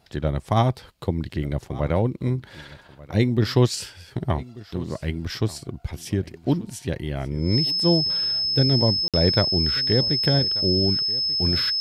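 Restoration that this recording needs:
notch filter 5,200 Hz, Q 30
repair the gap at 0:09.08, 57 ms
echo removal 1,187 ms −19.5 dB

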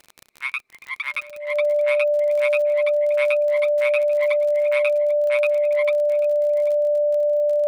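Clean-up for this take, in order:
click removal
notch filter 590 Hz, Q 30
echo removal 790 ms −18.5 dB

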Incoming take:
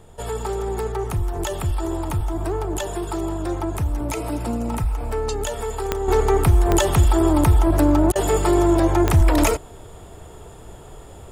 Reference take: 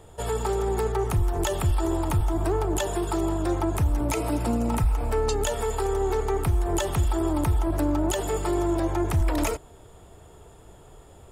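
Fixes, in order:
click removal
repair the gap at 0:08.12, 34 ms
downward expander −32 dBFS, range −21 dB
level correction −8 dB, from 0:06.08

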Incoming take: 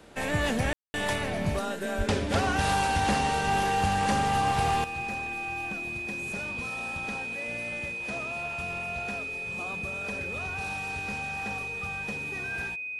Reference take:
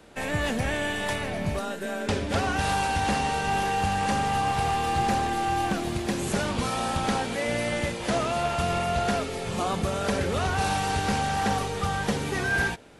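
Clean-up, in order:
notch filter 2,500 Hz, Q 30
0:01.97–0:02.09: high-pass filter 140 Hz 24 dB per octave
ambience match 0:00.73–0:00.94
level 0 dB, from 0:04.84 +12 dB

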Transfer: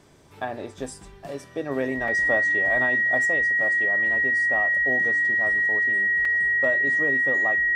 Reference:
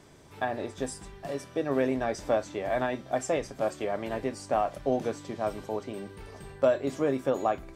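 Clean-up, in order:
notch filter 1,900 Hz, Q 30
repair the gap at 0:02.08/0:06.25, 3.4 ms
level 0 dB, from 0:03.25 +4 dB

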